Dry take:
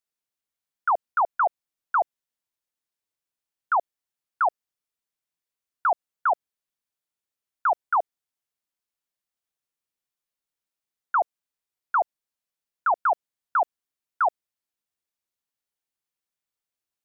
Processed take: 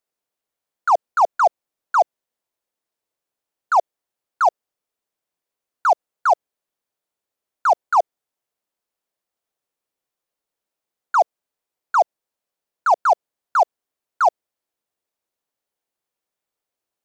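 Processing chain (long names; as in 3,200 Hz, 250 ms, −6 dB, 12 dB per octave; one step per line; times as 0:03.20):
parametric band 540 Hz +9.5 dB 2.1 octaves
in parallel at −12 dB: wave folding −23.5 dBFS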